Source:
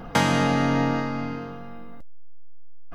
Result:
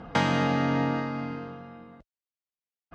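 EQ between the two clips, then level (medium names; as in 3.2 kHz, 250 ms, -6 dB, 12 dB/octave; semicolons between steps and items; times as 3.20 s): high-pass 44 Hz; low-pass 4.7 kHz 12 dB/octave; -3.5 dB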